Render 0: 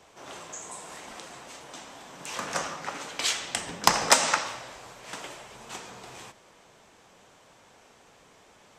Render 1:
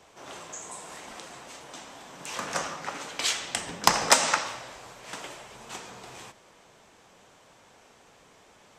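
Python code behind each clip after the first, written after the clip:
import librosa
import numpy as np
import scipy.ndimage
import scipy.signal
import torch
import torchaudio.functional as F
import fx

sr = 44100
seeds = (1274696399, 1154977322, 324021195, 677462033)

y = x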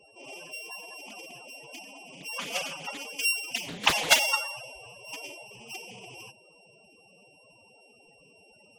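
y = np.r_[np.sort(x[:len(x) // 16 * 16].reshape(-1, 16), axis=1).ravel(), x[len(x) // 16 * 16:]]
y = fx.spec_topn(y, sr, count=16)
y = fx.doppler_dist(y, sr, depth_ms=0.91)
y = y * librosa.db_to_amplitude(2.5)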